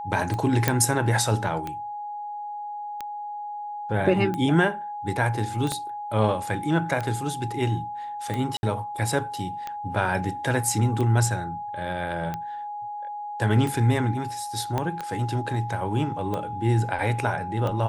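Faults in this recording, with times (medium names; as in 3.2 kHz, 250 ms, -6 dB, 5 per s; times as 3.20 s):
tick 45 rpm -17 dBFS
whine 830 Hz -31 dBFS
0.68 s: pop -4 dBFS
5.72 s: pop -13 dBFS
8.57–8.63 s: dropout 61 ms
14.78 s: pop -13 dBFS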